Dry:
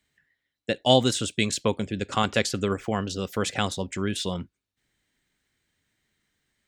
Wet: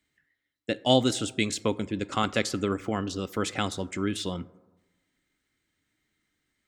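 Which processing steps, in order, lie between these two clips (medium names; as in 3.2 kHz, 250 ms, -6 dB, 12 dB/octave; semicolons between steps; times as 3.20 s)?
small resonant body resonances 300/1300/2100 Hz, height 8 dB; on a send: reverberation RT60 1.2 s, pre-delay 13 ms, DRR 19 dB; on the sum: trim -3.5 dB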